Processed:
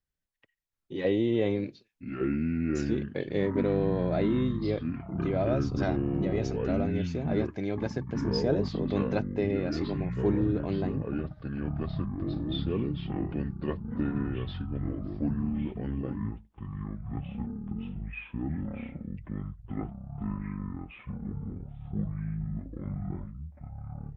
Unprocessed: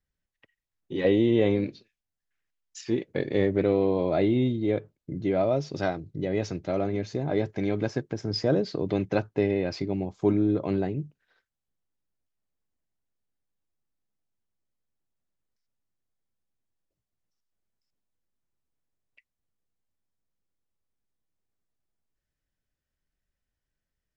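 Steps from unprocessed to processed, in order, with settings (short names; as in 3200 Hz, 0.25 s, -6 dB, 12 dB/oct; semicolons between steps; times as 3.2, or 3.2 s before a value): echoes that change speed 0.729 s, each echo -6 st, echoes 3; gain -4.5 dB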